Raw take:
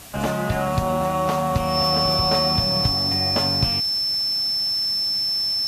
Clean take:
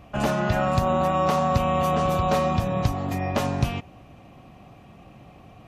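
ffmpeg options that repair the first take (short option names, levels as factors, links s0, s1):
-af "bandreject=f=5300:w=30,afwtdn=0.0089"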